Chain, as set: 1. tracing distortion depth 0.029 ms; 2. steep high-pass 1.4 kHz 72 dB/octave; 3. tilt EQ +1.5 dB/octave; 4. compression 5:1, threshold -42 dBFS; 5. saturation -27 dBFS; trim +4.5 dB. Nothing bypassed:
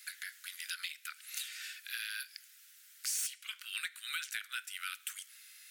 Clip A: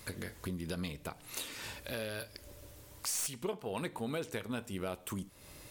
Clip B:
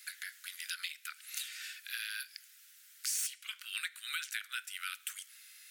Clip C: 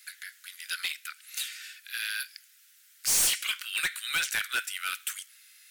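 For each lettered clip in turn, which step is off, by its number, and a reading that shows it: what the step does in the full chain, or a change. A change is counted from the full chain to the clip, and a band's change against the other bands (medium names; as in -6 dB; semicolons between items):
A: 2, 1 kHz band +10.5 dB; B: 5, distortion -24 dB; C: 4, mean gain reduction 10.5 dB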